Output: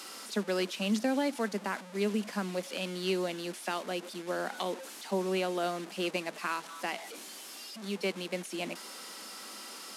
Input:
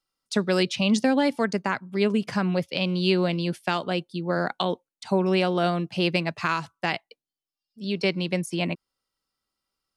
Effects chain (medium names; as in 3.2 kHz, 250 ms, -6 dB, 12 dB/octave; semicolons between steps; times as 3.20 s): one-bit delta coder 64 kbps, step -30 dBFS; elliptic high-pass 200 Hz, stop band 40 dB; trim -7.5 dB